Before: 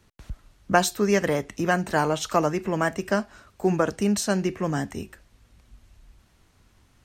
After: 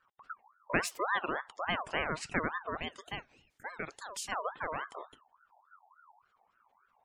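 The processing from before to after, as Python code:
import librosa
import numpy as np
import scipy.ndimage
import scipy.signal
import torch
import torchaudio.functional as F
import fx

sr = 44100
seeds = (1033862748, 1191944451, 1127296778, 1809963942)

y = fx.highpass(x, sr, hz=1100.0, slope=6, at=(2.77, 4.32))
y = fx.spec_gate(y, sr, threshold_db=-20, keep='strong')
y = fx.ring_lfo(y, sr, carrier_hz=1100.0, swing_pct=30, hz=3.5)
y = y * 10.0 ** (-8.0 / 20.0)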